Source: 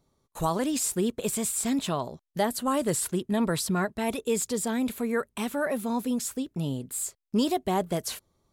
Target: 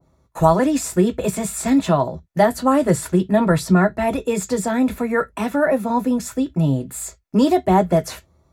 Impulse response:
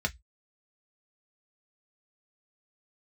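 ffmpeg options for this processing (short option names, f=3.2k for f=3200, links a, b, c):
-filter_complex "[0:a]asplit=2[a][b];[1:a]atrim=start_sample=2205,atrim=end_sample=3969[c];[b][c]afir=irnorm=-1:irlink=0,volume=-4dB[d];[a][d]amix=inputs=2:normalize=0,adynamicequalizer=threshold=0.0126:dfrequency=1500:dqfactor=0.7:tfrequency=1500:tqfactor=0.7:attack=5:release=100:ratio=0.375:range=1.5:mode=cutabove:tftype=highshelf,volume=5.5dB"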